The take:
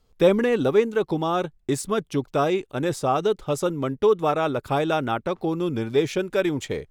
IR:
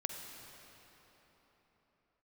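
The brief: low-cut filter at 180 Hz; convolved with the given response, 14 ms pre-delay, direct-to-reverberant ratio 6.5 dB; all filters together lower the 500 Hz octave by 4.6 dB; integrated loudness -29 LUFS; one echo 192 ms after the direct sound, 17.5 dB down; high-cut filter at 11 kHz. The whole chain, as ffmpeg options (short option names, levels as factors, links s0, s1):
-filter_complex "[0:a]highpass=180,lowpass=11000,equalizer=f=500:t=o:g=-5.5,aecho=1:1:192:0.133,asplit=2[s0][s1];[1:a]atrim=start_sample=2205,adelay=14[s2];[s1][s2]afir=irnorm=-1:irlink=0,volume=0.447[s3];[s0][s3]amix=inputs=2:normalize=0,volume=0.708"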